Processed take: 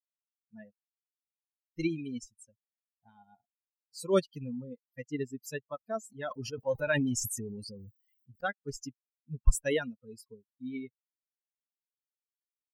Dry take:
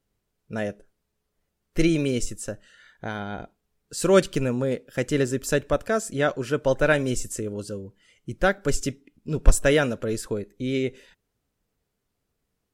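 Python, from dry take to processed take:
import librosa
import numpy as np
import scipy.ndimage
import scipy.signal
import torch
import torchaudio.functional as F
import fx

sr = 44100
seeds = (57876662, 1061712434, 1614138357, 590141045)

y = fx.bin_expand(x, sr, power=3.0)
y = fx.sustainer(y, sr, db_per_s=24.0, at=(6.06, 8.41))
y = y * librosa.db_to_amplitude(-5.5)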